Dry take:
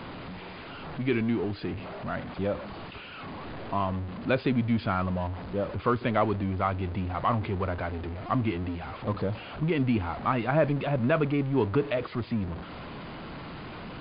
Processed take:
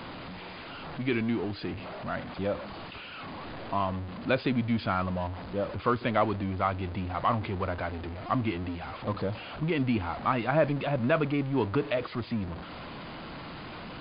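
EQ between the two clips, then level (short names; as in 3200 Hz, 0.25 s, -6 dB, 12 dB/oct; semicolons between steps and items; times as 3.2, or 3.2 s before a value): tone controls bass -3 dB, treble +5 dB; bell 410 Hz -4 dB 0.24 oct; 0.0 dB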